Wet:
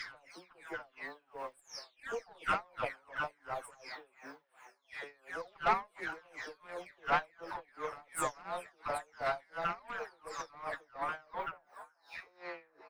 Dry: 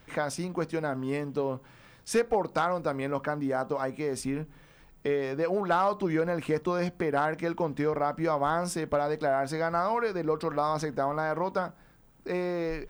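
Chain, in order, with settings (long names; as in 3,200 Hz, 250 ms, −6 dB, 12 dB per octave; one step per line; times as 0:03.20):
every frequency bin delayed by itself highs early, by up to 531 ms
parametric band 12,000 Hz +4.5 dB 1.4 octaves
echo with shifted repeats 426 ms, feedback 54%, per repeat +110 Hz, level −18 dB
harmonic and percussive parts rebalanced harmonic −4 dB
high-pass filter 1,000 Hz 12 dB per octave
high-shelf EQ 4,100 Hz −10.5 dB
tube saturation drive 29 dB, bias 0.8
tremolo with a sine in dB 2.8 Hz, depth 27 dB
level +10 dB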